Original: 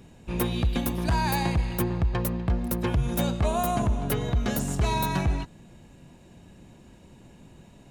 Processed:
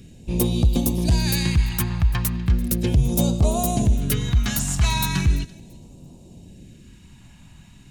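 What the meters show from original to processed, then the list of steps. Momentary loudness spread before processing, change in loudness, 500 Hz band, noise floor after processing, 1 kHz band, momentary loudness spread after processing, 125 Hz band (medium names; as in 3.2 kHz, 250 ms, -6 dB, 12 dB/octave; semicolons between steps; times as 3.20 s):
3 LU, +5.5 dB, +1.0 dB, -47 dBFS, -2.5 dB, 3 LU, +6.5 dB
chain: dynamic bell 6.9 kHz, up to +4 dB, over -50 dBFS, Q 0.79; thinning echo 338 ms, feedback 23%, level -21 dB; phase shifter stages 2, 0.37 Hz, lowest notch 430–1700 Hz; trim +6 dB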